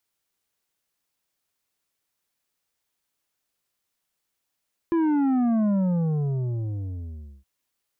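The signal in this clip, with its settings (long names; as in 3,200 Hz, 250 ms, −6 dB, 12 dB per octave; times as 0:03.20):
bass drop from 340 Hz, over 2.52 s, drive 8 dB, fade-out 1.77 s, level −20 dB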